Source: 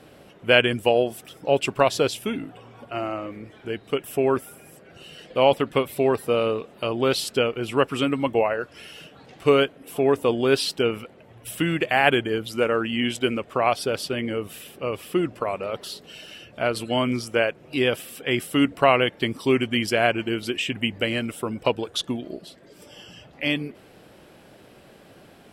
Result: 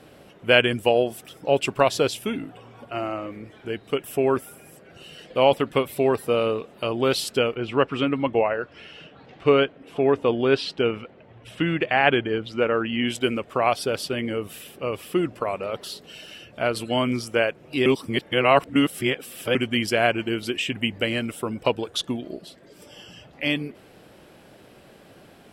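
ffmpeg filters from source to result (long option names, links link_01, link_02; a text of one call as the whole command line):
ffmpeg -i in.wav -filter_complex "[0:a]asplit=3[link_01][link_02][link_03];[link_01]afade=type=out:start_time=7.54:duration=0.02[link_04];[link_02]lowpass=3700,afade=type=in:start_time=7.54:duration=0.02,afade=type=out:start_time=13.06:duration=0.02[link_05];[link_03]afade=type=in:start_time=13.06:duration=0.02[link_06];[link_04][link_05][link_06]amix=inputs=3:normalize=0,asplit=3[link_07][link_08][link_09];[link_07]atrim=end=17.862[link_10];[link_08]atrim=start=17.858:end=19.552,asetpts=PTS-STARTPTS,areverse[link_11];[link_09]atrim=start=19.548[link_12];[link_10][link_11]acrossfade=duration=0.004:curve1=hsin:curve2=hsin[link_13];[link_13][link_12]acrossfade=duration=0.004:curve1=hsin:curve2=hsin" out.wav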